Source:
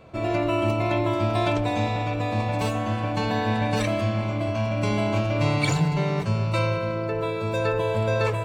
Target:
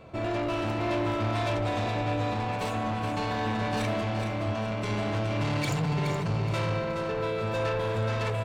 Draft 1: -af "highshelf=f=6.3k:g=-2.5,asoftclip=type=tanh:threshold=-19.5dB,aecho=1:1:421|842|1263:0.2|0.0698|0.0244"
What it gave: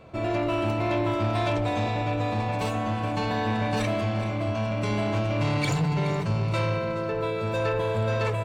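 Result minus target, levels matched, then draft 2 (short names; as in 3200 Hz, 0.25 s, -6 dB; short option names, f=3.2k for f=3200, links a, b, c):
echo-to-direct -6.5 dB; soft clip: distortion -6 dB
-af "highshelf=f=6.3k:g=-2.5,asoftclip=type=tanh:threshold=-26dB,aecho=1:1:421|842|1263|1684:0.422|0.148|0.0517|0.0181"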